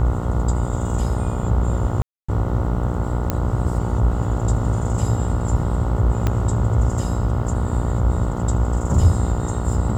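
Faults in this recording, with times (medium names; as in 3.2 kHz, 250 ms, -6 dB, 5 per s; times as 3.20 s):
buzz 60 Hz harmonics 24 -24 dBFS
2.02–2.29 s: dropout 265 ms
3.30 s: pop -6 dBFS
6.27 s: pop -8 dBFS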